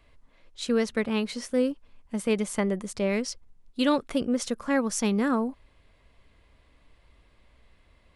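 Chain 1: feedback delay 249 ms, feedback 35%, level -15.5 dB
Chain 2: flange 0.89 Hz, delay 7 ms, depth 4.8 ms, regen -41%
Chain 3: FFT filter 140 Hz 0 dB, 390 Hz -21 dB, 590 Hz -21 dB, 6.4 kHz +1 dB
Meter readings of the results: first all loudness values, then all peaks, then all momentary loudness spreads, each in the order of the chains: -27.5 LUFS, -32.0 LUFS, -37.0 LUFS; -10.5 dBFS, -15.0 dBFS, -14.5 dBFS; 11 LU, 10 LU, 11 LU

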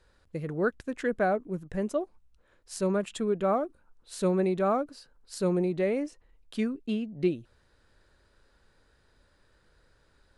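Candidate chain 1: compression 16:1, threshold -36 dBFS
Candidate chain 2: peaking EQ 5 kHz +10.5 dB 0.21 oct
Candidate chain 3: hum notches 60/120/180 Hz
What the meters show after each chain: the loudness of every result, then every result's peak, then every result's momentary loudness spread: -41.5 LUFS, -30.0 LUFS, -30.5 LUFS; -20.5 dBFS, -14.5 dBFS, -15.0 dBFS; 7 LU, 13 LU, 13 LU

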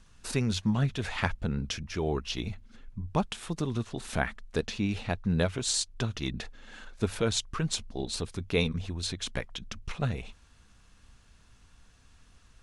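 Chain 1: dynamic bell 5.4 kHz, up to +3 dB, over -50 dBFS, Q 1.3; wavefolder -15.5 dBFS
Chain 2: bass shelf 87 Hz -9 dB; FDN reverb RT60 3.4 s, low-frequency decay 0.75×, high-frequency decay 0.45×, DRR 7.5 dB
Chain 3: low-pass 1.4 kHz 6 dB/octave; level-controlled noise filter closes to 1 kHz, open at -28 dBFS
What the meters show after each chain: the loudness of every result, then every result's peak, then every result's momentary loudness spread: -31.5 LUFS, -32.5 LUFS, -33.5 LUFS; -15.5 dBFS, -11.0 dBFS, -12.5 dBFS; 12 LU, 12 LU, 11 LU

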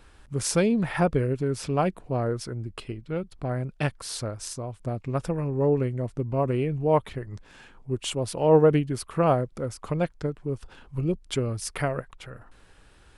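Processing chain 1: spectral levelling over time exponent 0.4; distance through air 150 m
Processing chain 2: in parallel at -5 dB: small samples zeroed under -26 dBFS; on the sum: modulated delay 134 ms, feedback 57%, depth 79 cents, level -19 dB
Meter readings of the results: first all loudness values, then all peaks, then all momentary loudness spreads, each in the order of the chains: -22.0 LUFS, -23.0 LUFS; -5.5 dBFS, -3.5 dBFS; 9 LU, 14 LU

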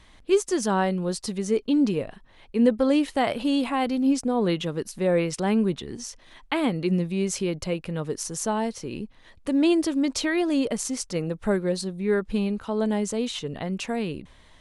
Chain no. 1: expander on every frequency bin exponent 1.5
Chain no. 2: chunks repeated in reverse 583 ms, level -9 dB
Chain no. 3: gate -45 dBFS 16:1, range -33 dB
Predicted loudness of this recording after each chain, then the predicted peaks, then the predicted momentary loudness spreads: -28.0 LUFS, -25.0 LUFS, -25.5 LUFS; -10.0 dBFS, -8.5 dBFS, -8.5 dBFS; 12 LU, 9 LU, 9 LU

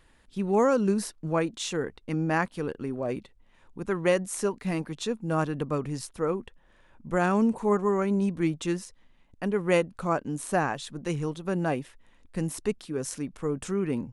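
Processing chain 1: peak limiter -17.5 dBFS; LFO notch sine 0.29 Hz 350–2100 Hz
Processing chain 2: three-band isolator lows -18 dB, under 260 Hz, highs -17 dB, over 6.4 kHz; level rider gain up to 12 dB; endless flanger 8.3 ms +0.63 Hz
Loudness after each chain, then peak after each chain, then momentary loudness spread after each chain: -31.5 LUFS, -24.0 LUFS; -17.0 dBFS, -5.0 dBFS; 10 LU, 10 LU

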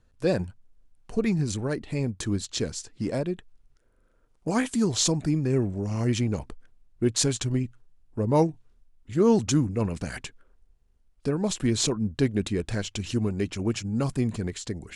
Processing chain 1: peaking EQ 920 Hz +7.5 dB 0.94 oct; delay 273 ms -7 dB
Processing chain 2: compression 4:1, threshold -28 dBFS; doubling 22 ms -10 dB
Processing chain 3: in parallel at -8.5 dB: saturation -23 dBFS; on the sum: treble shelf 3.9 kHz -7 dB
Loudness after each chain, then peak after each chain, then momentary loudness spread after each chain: -26.0 LUFS, -32.5 LUFS, -26.0 LUFS; -7.0 dBFS, -13.5 dBFS, -9.0 dBFS; 11 LU, 7 LU, 10 LU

